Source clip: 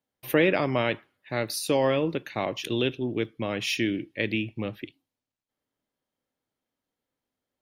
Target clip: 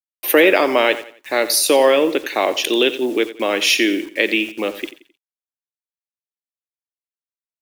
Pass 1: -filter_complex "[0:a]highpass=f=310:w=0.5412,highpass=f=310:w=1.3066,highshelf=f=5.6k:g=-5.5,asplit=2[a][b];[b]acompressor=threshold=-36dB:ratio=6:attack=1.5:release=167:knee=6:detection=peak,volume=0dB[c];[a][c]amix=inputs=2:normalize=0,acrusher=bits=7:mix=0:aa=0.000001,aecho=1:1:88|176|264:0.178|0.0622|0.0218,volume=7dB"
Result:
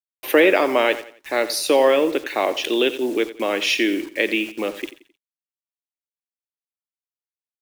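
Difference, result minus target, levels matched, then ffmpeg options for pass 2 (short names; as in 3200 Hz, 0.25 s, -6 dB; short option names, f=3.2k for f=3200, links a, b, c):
compressor: peak gain reduction +9.5 dB; 8000 Hz band -5.5 dB
-filter_complex "[0:a]highpass=f=310:w=0.5412,highpass=f=310:w=1.3066,highshelf=f=5.6k:g=6,asplit=2[a][b];[b]acompressor=threshold=-24.5dB:ratio=6:attack=1.5:release=167:knee=6:detection=peak,volume=0dB[c];[a][c]amix=inputs=2:normalize=0,acrusher=bits=7:mix=0:aa=0.000001,aecho=1:1:88|176|264:0.178|0.0622|0.0218,volume=7dB"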